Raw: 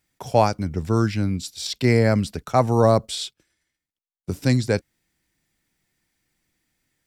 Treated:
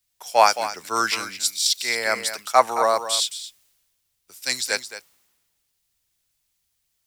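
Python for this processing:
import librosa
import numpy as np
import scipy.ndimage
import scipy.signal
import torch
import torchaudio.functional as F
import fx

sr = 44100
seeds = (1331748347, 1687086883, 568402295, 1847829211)

p1 = scipy.signal.sosfilt(scipy.signal.butter(2, 1100.0, 'highpass', fs=sr, output='sos'), x)
p2 = fx.high_shelf(p1, sr, hz=5500.0, db=8.0)
p3 = fx.rider(p2, sr, range_db=4, speed_s=0.5)
p4 = fx.quant_dither(p3, sr, seeds[0], bits=10, dither='triangular')
p5 = p4 + fx.echo_single(p4, sr, ms=222, db=-8.5, dry=0)
p6 = fx.band_widen(p5, sr, depth_pct=70)
y = p6 * librosa.db_to_amplitude(5.0)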